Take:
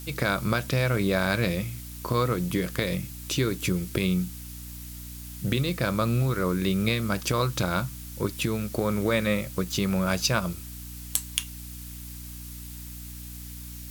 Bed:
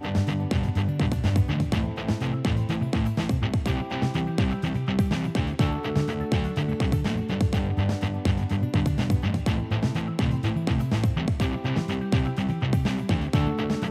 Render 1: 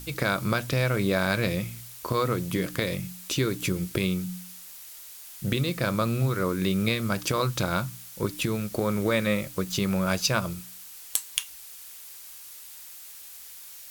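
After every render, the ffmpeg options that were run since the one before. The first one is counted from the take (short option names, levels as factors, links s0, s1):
-af "bandreject=f=60:t=h:w=4,bandreject=f=120:t=h:w=4,bandreject=f=180:t=h:w=4,bandreject=f=240:t=h:w=4,bandreject=f=300:t=h:w=4"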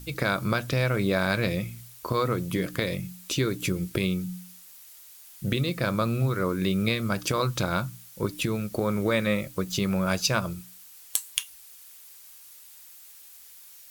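-af "afftdn=nr=6:nf=-45"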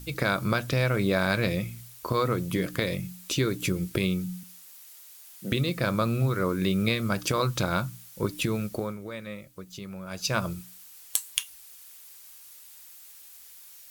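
-filter_complex "[0:a]asettb=1/sr,asplit=3[s0][s1][s2];[s0]atrim=end=4.434[s3];[s1]atrim=start=4.43:end=5.52,asetpts=PTS-STARTPTS,afade=t=in:d=0.004:c=qsin,afade=t=out:st=1.086:d=0.004:c=qsin,highpass=f=200:w=0.5412,highpass=f=200:w=1.3066[s4];[s2]atrim=start=5.516[s5];[s3][s4]acrossfade=d=0.004:c1=hsin:c2=qsin[s6];[s6][s5]acrossfade=d=0.004:c1=qsin:c2=hsin,asplit=3[s7][s8][s9];[s7]atrim=end=8.98,asetpts=PTS-STARTPTS,afade=t=out:st=8.66:d=0.32:silence=0.211349[s10];[s8]atrim=start=8.98:end=10.1,asetpts=PTS-STARTPTS,volume=0.211[s11];[s9]atrim=start=10.1,asetpts=PTS-STARTPTS,afade=t=in:d=0.32:silence=0.211349[s12];[s10][s11][s12]concat=n=3:v=0:a=1"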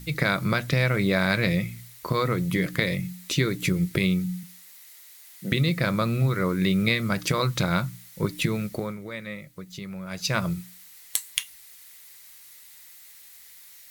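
-af "equalizer=f=160:t=o:w=0.33:g=11,equalizer=f=2000:t=o:w=0.33:g=10,equalizer=f=4000:t=o:w=0.33:g=4"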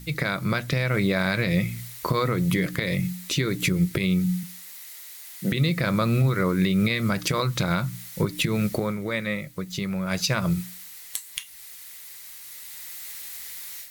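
-af "dynaudnorm=f=690:g=3:m=3.76,alimiter=limit=0.224:level=0:latency=1:release=240"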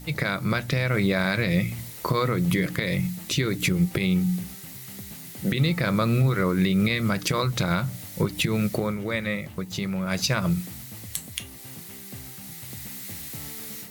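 -filter_complex "[1:a]volume=0.106[s0];[0:a][s0]amix=inputs=2:normalize=0"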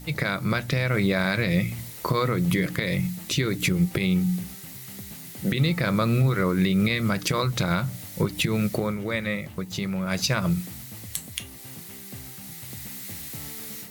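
-af anull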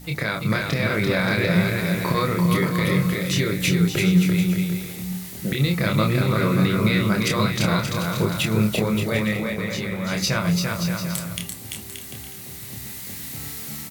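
-filter_complex "[0:a]asplit=2[s0][s1];[s1]adelay=28,volume=0.631[s2];[s0][s2]amix=inputs=2:normalize=0,aecho=1:1:340|578|744.6|861.2|942.9:0.631|0.398|0.251|0.158|0.1"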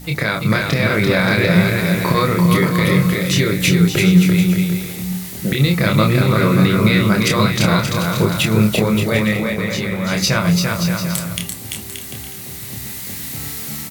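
-af "volume=2"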